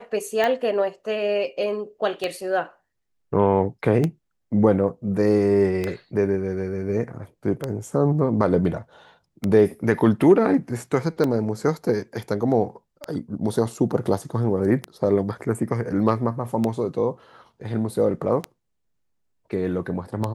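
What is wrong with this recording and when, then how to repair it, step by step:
scratch tick 33 1/3 rpm −11 dBFS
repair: click removal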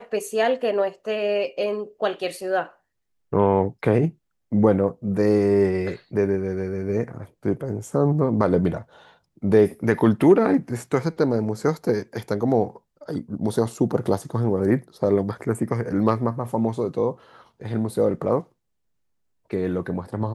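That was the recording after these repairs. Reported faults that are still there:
none of them is left

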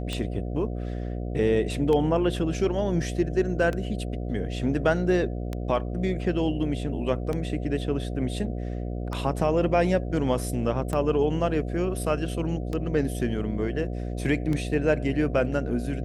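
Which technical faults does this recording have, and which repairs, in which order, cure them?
mains buzz 60 Hz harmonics 12 −31 dBFS
scratch tick 33 1/3 rpm −17 dBFS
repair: click removal
hum removal 60 Hz, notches 12

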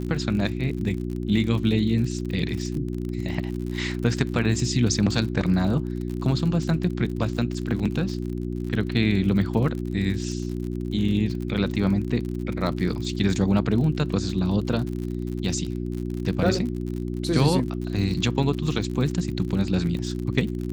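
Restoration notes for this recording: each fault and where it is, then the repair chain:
surface crackle 59 per second −31 dBFS
mains hum 60 Hz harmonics 6 −29 dBFS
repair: click removal
hum removal 60 Hz, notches 6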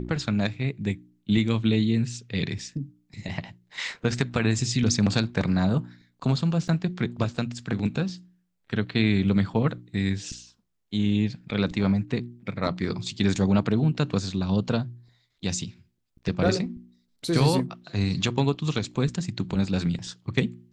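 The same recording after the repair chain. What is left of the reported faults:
none of them is left

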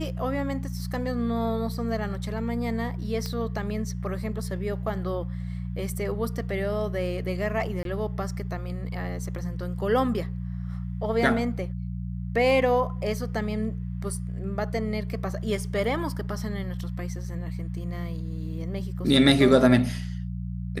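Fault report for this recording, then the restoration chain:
mains hum 60 Hz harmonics 3 −32 dBFS
0:03.26: click −19 dBFS
0:07.83–0:07.85: drop-out 22 ms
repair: click removal
hum removal 60 Hz, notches 3
repair the gap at 0:07.83, 22 ms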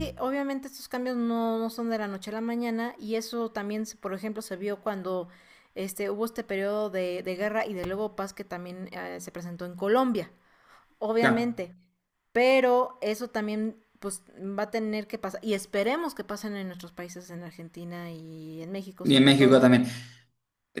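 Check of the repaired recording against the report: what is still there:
none of them is left

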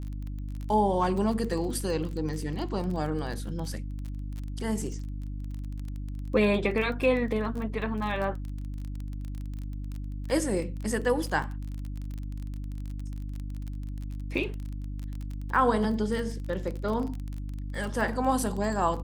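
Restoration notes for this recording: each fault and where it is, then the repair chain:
surface crackle 28 per second −33 dBFS
mains hum 50 Hz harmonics 6 −35 dBFS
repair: click removal
hum removal 50 Hz, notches 6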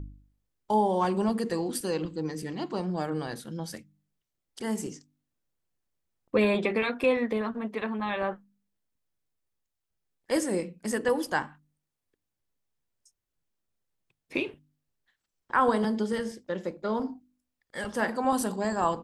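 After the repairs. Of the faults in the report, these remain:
none of them is left

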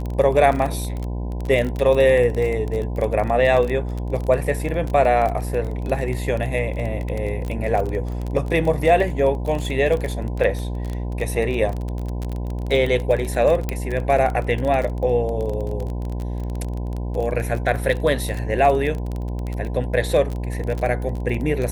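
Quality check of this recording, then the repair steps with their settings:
mains buzz 60 Hz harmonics 17 −26 dBFS
surface crackle 25 per second −24 dBFS
0:13.69: click −10 dBFS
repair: click removal
hum removal 60 Hz, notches 17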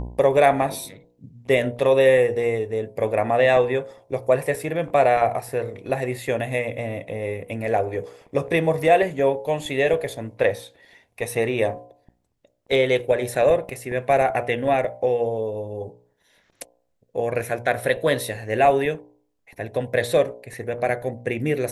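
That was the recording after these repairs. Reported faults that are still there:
0:13.69: click

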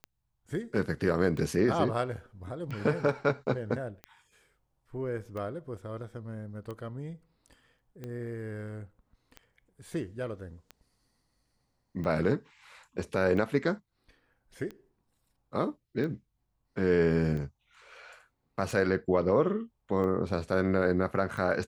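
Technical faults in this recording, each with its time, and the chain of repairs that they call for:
scratch tick 45 rpm −27 dBFS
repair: click removal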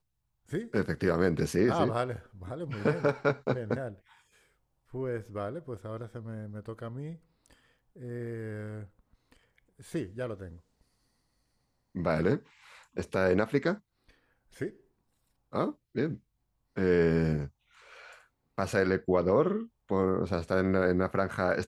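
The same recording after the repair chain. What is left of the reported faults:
none of them is left

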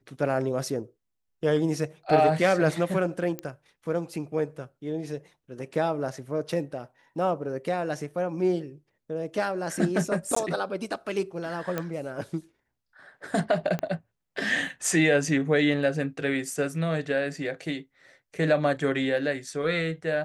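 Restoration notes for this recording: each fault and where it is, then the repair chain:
0:03.39: click −18 dBFS
0:10.35–0:10.36: drop-out 14 ms
0:11.78: click −15 dBFS
0:13.79: click −17 dBFS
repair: click removal
repair the gap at 0:10.35, 14 ms

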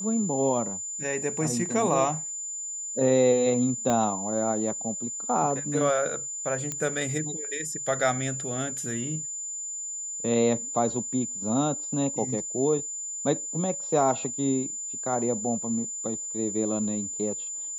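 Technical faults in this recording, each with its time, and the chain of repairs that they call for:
whistle 7,100 Hz −32 dBFS
0:03.90: click −13 dBFS
0:06.72: click −16 dBFS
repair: click removal
notch filter 7,100 Hz, Q 30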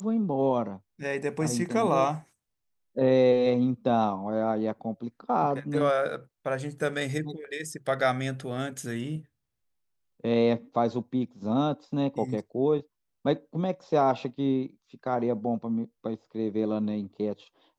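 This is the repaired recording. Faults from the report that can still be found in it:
0:03.90: click

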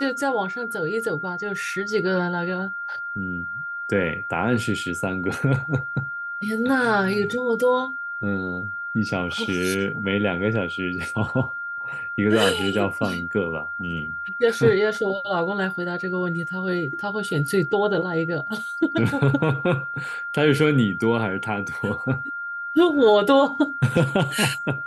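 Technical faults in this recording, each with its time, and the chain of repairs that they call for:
whistle 1,400 Hz −28 dBFS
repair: notch filter 1,400 Hz, Q 30

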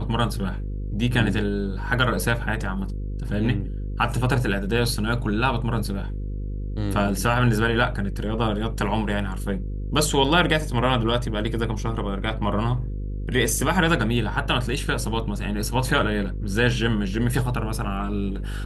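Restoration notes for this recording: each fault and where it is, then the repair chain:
mains buzz 50 Hz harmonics 10 −29 dBFS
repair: hum removal 50 Hz, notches 10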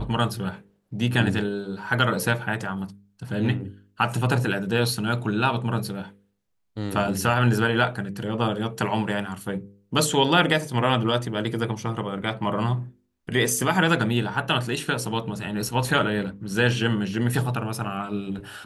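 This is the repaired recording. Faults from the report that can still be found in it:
none of them is left

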